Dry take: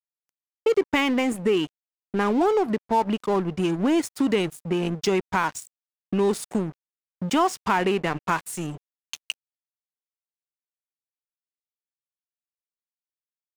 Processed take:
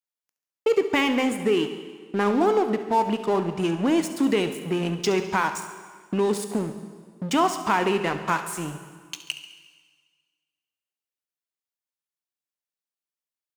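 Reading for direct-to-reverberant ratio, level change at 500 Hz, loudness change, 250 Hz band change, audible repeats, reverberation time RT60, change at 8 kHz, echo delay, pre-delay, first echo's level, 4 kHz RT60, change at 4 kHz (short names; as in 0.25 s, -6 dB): 8.0 dB, +0.5 dB, 0.0 dB, -0.5 dB, 2, 1.7 s, +0.5 dB, 69 ms, 6 ms, -14.5 dB, 1.5 s, +1.0 dB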